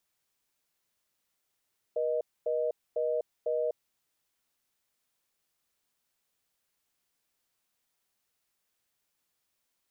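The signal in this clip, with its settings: call progress tone reorder tone, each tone -29.5 dBFS 1.90 s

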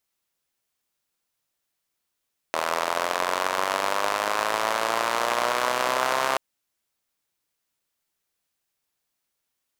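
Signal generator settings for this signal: four-cylinder engine model, changing speed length 3.83 s, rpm 2400, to 4000, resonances 650/1000 Hz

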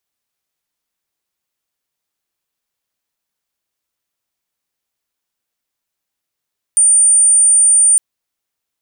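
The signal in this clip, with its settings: tone sine 9040 Hz -6.5 dBFS 1.21 s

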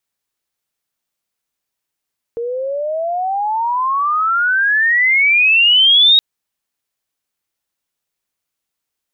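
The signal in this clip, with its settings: chirp logarithmic 460 Hz -> 3800 Hz -19 dBFS -> -6 dBFS 3.82 s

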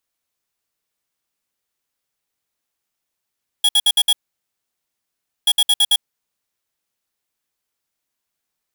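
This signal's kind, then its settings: beep pattern square 3330 Hz, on 0.05 s, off 0.06 s, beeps 5, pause 1.34 s, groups 2, -13.5 dBFS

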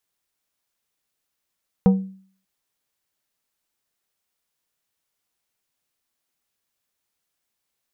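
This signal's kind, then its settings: glass hit plate, length 0.59 s, lowest mode 191 Hz, decay 0.50 s, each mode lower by 8 dB, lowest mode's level -8.5 dB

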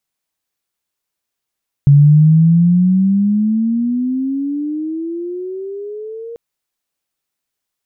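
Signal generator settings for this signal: chirp logarithmic 140 Hz -> 470 Hz -3.5 dBFS -> -26 dBFS 4.49 s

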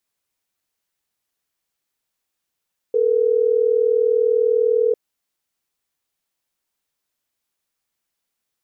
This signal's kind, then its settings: call progress tone ringback tone, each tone -17 dBFS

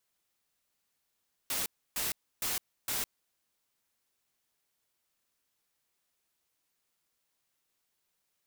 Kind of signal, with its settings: noise bursts white, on 0.16 s, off 0.30 s, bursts 4, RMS -33 dBFS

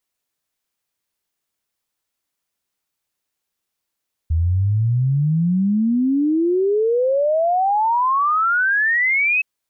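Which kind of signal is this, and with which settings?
log sweep 78 Hz -> 2600 Hz 5.12 s -14.5 dBFS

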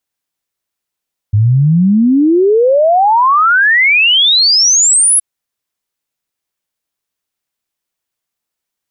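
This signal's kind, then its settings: log sweep 100 Hz -> 11000 Hz 3.87 s -6 dBFS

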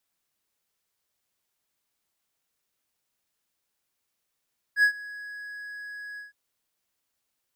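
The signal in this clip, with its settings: ADSR triangle 1670 Hz, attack 72 ms, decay 88 ms, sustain -21.5 dB, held 1.42 s, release 0.144 s -13 dBFS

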